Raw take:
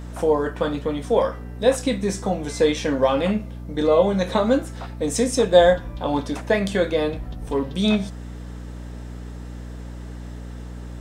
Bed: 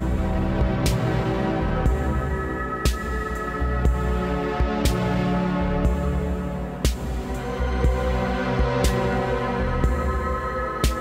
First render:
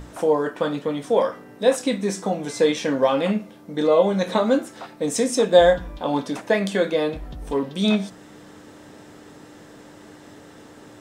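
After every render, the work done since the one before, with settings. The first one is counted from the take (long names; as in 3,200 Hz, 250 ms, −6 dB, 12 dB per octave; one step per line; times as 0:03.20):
mains-hum notches 60/120/180/240 Hz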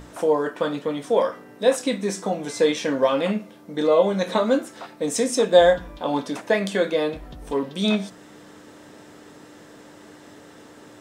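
low-shelf EQ 150 Hz −6.5 dB
notch filter 800 Hz, Q 24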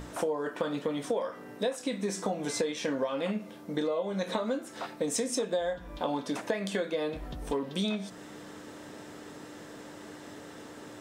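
downward compressor 16 to 1, threshold −27 dBFS, peak gain reduction 19 dB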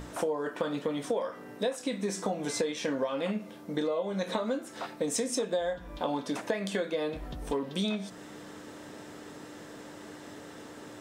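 no processing that can be heard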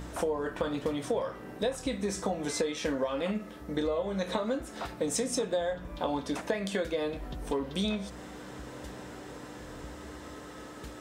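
mix in bed −25.5 dB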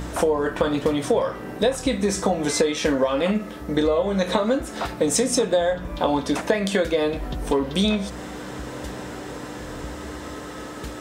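level +10 dB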